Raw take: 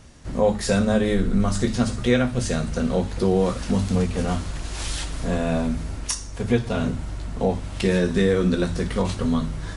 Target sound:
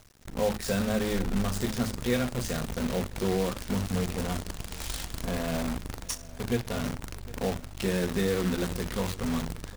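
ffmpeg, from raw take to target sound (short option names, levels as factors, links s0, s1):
-af "acrusher=bits=5:dc=4:mix=0:aa=0.000001,aecho=1:1:757:0.1,volume=0.398"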